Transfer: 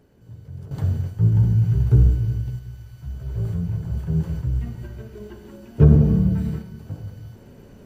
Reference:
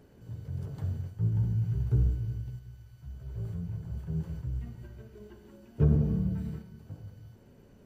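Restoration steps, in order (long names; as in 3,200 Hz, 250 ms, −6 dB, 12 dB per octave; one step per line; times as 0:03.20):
level correction −11 dB, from 0:00.71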